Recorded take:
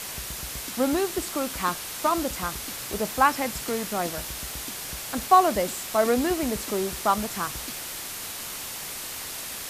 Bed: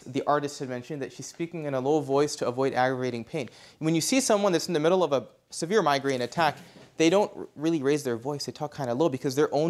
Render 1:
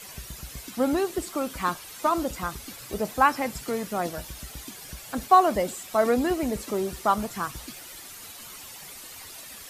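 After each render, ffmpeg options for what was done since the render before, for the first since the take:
-af "afftdn=nr=11:nf=-36"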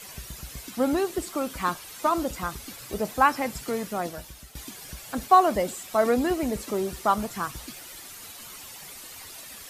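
-filter_complex "[0:a]asplit=2[s0][s1];[s0]atrim=end=4.55,asetpts=PTS-STARTPTS,afade=t=out:st=3.82:d=0.73:silence=0.354813[s2];[s1]atrim=start=4.55,asetpts=PTS-STARTPTS,afade=t=in:d=0.004:c=hsin:silence=0.354813[s3];[s2][s3]concat=n=2:v=0:a=1"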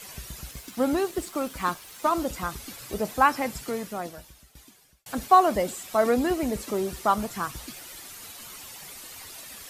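-filter_complex "[0:a]asettb=1/sr,asplit=3[s0][s1][s2];[s0]atrim=end=0.514[s3];[s1]atrim=start=0.51:end=2.25,asetpts=PTS-STARTPTS,afade=t=in:d=0.004:c=qsin,afade=t=out:st=1.736:d=0.004:c=qsin,aeval=exprs='sgn(val(0))*max(abs(val(0))-0.00299,0)':c=same[s4];[s2]atrim=start=2.246[s5];[s3][s4]acrossfade=d=0.004:c1=hsin:c2=qsin[s6];[s6][s5]acrossfade=d=0.004:c1=qsin:c2=hsin,asplit=2[s7][s8];[s7]atrim=end=5.06,asetpts=PTS-STARTPTS,afade=t=out:st=3.46:d=1.6[s9];[s8]atrim=start=5.06,asetpts=PTS-STARTPTS,afade=t=in:d=0.004:c=hsin[s10];[s9][s10]concat=n=2:v=0:a=1"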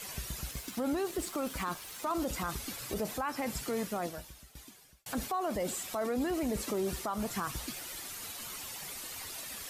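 -af "acompressor=threshold=0.0631:ratio=6,alimiter=level_in=1.12:limit=0.0631:level=0:latency=1:release=21,volume=0.891"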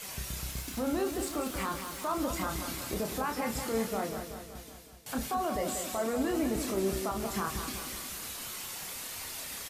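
-filter_complex "[0:a]asplit=2[s0][s1];[s1]adelay=31,volume=0.562[s2];[s0][s2]amix=inputs=2:normalize=0,asplit=2[s3][s4];[s4]aecho=0:1:187|374|561|748|935|1122|1309:0.398|0.231|0.134|0.0777|0.0451|0.0261|0.0152[s5];[s3][s5]amix=inputs=2:normalize=0"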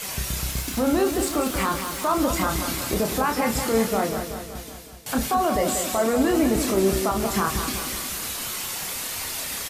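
-af "volume=3.16"

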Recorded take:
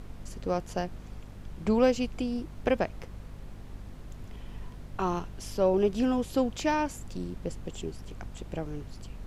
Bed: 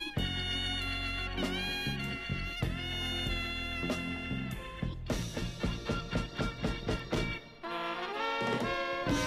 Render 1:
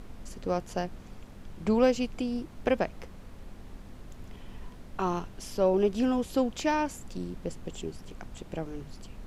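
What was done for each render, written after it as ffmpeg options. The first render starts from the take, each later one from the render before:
-af "bandreject=f=50:t=h:w=6,bandreject=f=100:t=h:w=6,bandreject=f=150:t=h:w=6"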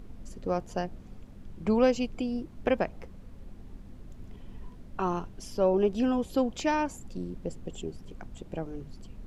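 -af "afftdn=nr=8:nf=-47"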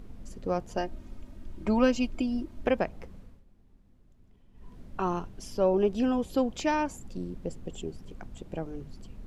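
-filter_complex "[0:a]asettb=1/sr,asplit=3[s0][s1][s2];[s0]atrim=end=0.774[s3];[s1]atrim=start=0.77:end=2.67,asetpts=PTS-STARTPTS,afade=t=in:d=0.004:c=qsin,afade=t=out:st=1.896:d=0.004:c=qsin,aecho=1:1:3.2:0.65,atrim=end_sample=83790[s4];[s2]atrim=start=2.666[s5];[s3][s4]acrossfade=d=0.004:c1=hsin:c2=qsin[s6];[s6][s5]acrossfade=d=0.004:c1=qsin:c2=hsin,asplit=3[s7][s8][s9];[s7]atrim=end=3.43,asetpts=PTS-STARTPTS,afade=t=out:st=3.17:d=0.26:silence=0.177828[s10];[s8]atrim=start=3.43:end=4.53,asetpts=PTS-STARTPTS,volume=0.178[s11];[s9]atrim=start=4.53,asetpts=PTS-STARTPTS,afade=t=in:d=0.26:silence=0.177828[s12];[s10][s11][s12]concat=n=3:v=0:a=1"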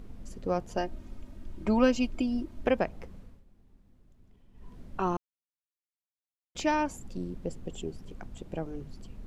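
-filter_complex "[0:a]asplit=3[s0][s1][s2];[s0]atrim=end=5.17,asetpts=PTS-STARTPTS,afade=t=out:st=5.166:d=0.004:c=hsin[s3];[s1]atrim=start=5.17:end=6.55,asetpts=PTS-STARTPTS,volume=0[s4];[s2]atrim=start=6.55,asetpts=PTS-STARTPTS,afade=t=in:d=0.004:c=hsin[s5];[s3][s4][s5]concat=n=3:v=0:a=1"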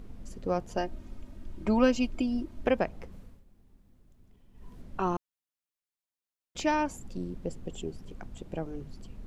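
-filter_complex "[0:a]asettb=1/sr,asplit=3[s0][s1][s2];[s0]atrim=end=3.124[s3];[s1]atrim=start=3.12:end=4.82,asetpts=PTS-STARTPTS,afade=t=in:d=0.004:c=qsin,afade=t=out:st=1.696:d=0.004:c=qsin,highshelf=f=8100:g=7[s4];[s2]atrim=start=4.816[s5];[s3][s4]acrossfade=d=0.004:c1=hsin:c2=qsin[s6];[s6][s5]acrossfade=d=0.004:c1=qsin:c2=hsin"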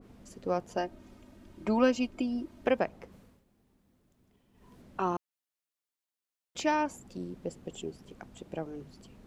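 -af "highpass=f=210:p=1,adynamicequalizer=threshold=0.00501:dfrequency=2000:dqfactor=0.7:tfrequency=2000:tqfactor=0.7:attack=5:release=100:ratio=0.375:range=2.5:mode=cutabove:tftype=highshelf"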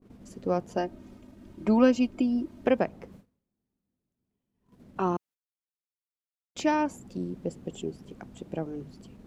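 -af "agate=range=0.1:threshold=0.002:ratio=16:detection=peak,equalizer=f=190:w=0.46:g=6.5"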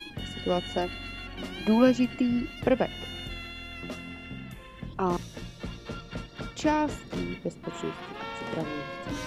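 -filter_complex "[1:a]volume=0.631[s0];[0:a][s0]amix=inputs=2:normalize=0"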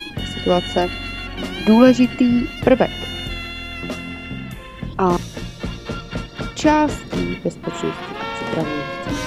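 -af "volume=3.35,alimiter=limit=0.891:level=0:latency=1"

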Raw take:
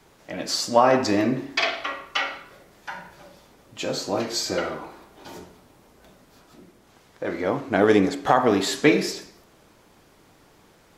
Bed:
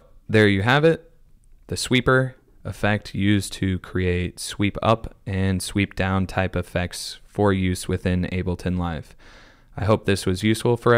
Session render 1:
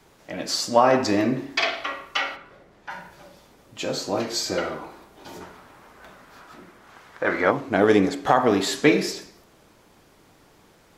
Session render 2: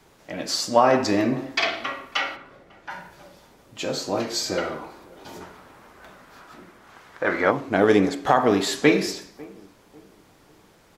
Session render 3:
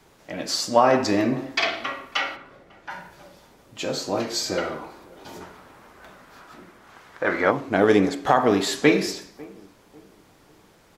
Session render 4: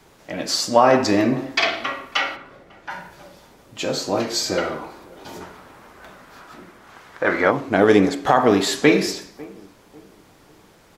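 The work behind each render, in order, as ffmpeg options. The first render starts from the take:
-filter_complex "[0:a]asplit=3[s0][s1][s2];[s0]afade=t=out:st=2.35:d=0.02[s3];[s1]aemphasis=mode=reproduction:type=75kf,afade=t=in:st=2.35:d=0.02,afade=t=out:st=2.89:d=0.02[s4];[s2]afade=t=in:st=2.89:d=0.02[s5];[s3][s4][s5]amix=inputs=3:normalize=0,asplit=3[s6][s7][s8];[s6]afade=t=out:st=5.4:d=0.02[s9];[s7]equalizer=f=1400:w=0.69:g=12.5,afade=t=in:st=5.4:d=0.02,afade=t=out:st=7.5:d=0.02[s10];[s8]afade=t=in:st=7.5:d=0.02[s11];[s9][s10][s11]amix=inputs=3:normalize=0"
-filter_complex "[0:a]asplit=2[s0][s1];[s1]adelay=547,lowpass=f=840:p=1,volume=0.0794,asplit=2[s2][s3];[s3]adelay=547,lowpass=f=840:p=1,volume=0.38,asplit=2[s4][s5];[s5]adelay=547,lowpass=f=840:p=1,volume=0.38[s6];[s0][s2][s4][s6]amix=inputs=4:normalize=0"
-af anull
-af "volume=1.5,alimiter=limit=0.794:level=0:latency=1"

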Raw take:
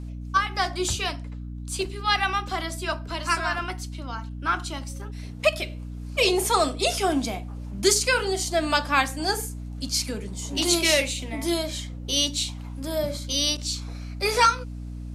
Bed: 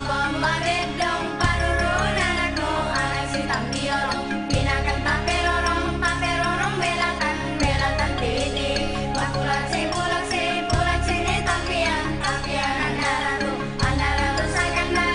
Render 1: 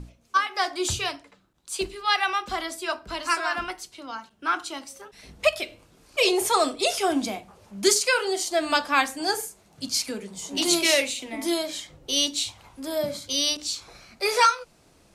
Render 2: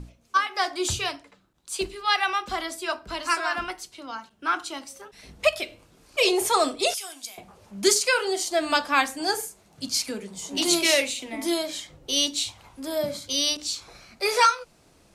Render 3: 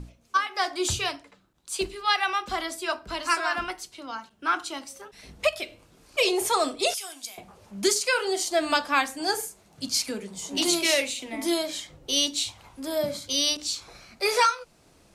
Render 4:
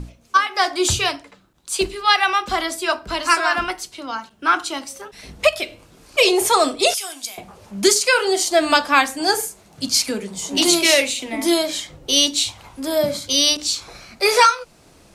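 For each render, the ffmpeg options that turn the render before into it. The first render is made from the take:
-af "bandreject=f=60:t=h:w=6,bandreject=f=120:t=h:w=6,bandreject=f=180:t=h:w=6,bandreject=f=240:t=h:w=6,bandreject=f=300:t=h:w=6"
-filter_complex "[0:a]asettb=1/sr,asplit=3[s0][s1][s2];[s0]atrim=end=6.944[s3];[s1]atrim=start=6.94:end=7.38,asetpts=PTS-STARTPTS,afade=t=in:d=0.004:c=qsin,afade=t=out:st=0.436:d=0.004:c=qsin,aderivative[s4];[s2]atrim=start=7.376[s5];[s3][s4]acrossfade=d=0.004:c1=hsin:c2=qsin[s6];[s6][s5]acrossfade=d=0.004:c1=qsin:c2=hsin"
-af "alimiter=limit=0.266:level=0:latency=1:release=464"
-af "volume=2.51"

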